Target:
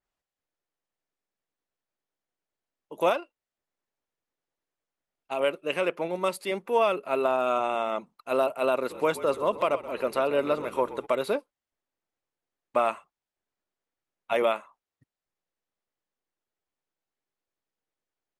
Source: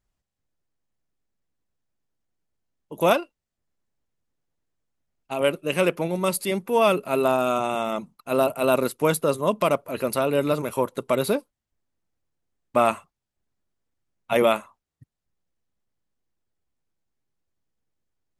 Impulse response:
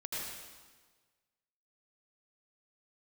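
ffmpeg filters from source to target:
-filter_complex "[0:a]lowpass=10000,bass=f=250:g=-15,treble=f=4000:g=-5,alimiter=limit=0.251:level=0:latency=1:release=285,asplit=3[s0][s1][s2];[s0]afade=t=out:st=8.89:d=0.02[s3];[s1]asplit=6[s4][s5][s6][s7][s8][s9];[s5]adelay=128,afreqshift=-45,volume=0.178[s10];[s6]adelay=256,afreqshift=-90,volume=0.0977[s11];[s7]adelay=384,afreqshift=-135,volume=0.0537[s12];[s8]adelay=512,afreqshift=-180,volume=0.0295[s13];[s9]adelay=640,afreqshift=-225,volume=0.0162[s14];[s4][s10][s11][s12][s13][s14]amix=inputs=6:normalize=0,afade=t=in:st=8.89:d=0.02,afade=t=out:st=11.05:d=0.02[s15];[s2]afade=t=in:st=11.05:d=0.02[s16];[s3][s15][s16]amix=inputs=3:normalize=0,adynamicequalizer=threshold=0.00631:dfrequency=3800:dqfactor=0.7:tfrequency=3800:tqfactor=0.7:attack=5:release=100:ratio=0.375:range=3:mode=cutabove:tftype=highshelf,volume=0.891"

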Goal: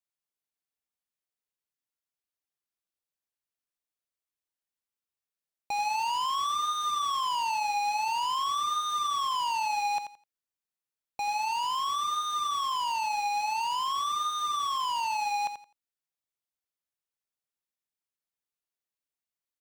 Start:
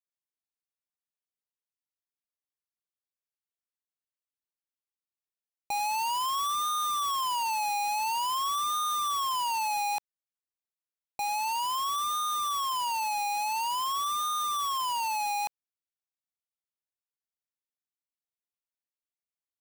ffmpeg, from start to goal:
-filter_complex "[0:a]acrossover=split=7000[s0][s1];[s1]acompressor=threshold=0.00224:ratio=4:attack=1:release=60[s2];[s0][s2]amix=inputs=2:normalize=0,aecho=1:1:85|170|255:0.355|0.0745|0.0156"

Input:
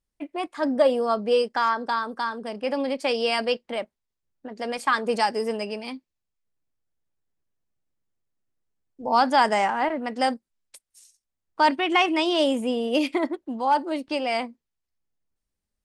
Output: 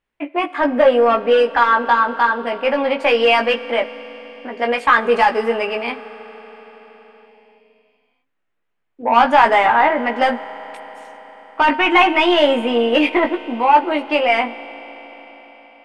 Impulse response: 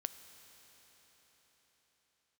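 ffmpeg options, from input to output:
-filter_complex "[0:a]asplit=2[s0][s1];[s1]highpass=f=720:p=1,volume=6.31,asoftclip=type=tanh:threshold=0.422[s2];[s0][s2]amix=inputs=2:normalize=0,lowpass=f=3400:p=1,volume=0.501,highshelf=f=3600:t=q:w=1.5:g=-10.5,asplit=2[s3][s4];[1:a]atrim=start_sample=2205,adelay=17[s5];[s4][s5]afir=irnorm=-1:irlink=0,volume=0.841[s6];[s3][s6]amix=inputs=2:normalize=0,volume=1.26"

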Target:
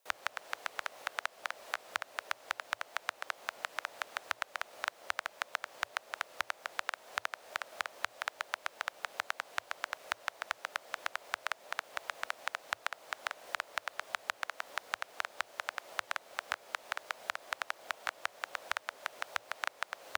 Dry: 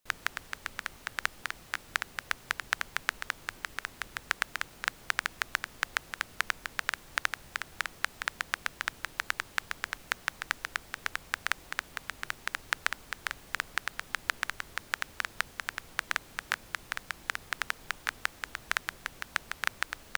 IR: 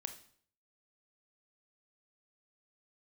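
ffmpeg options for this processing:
-filter_complex "[0:a]highpass=f=720:t=q:w=3.5,acrossover=split=2600|7000[s0][s1][s2];[s0]acompressor=threshold=0.0158:ratio=4[s3];[s1]acompressor=threshold=0.00501:ratio=4[s4];[s2]acompressor=threshold=0.00112:ratio=4[s5];[s3][s4][s5]amix=inputs=3:normalize=0,afreqshift=-120,volume=1.26"

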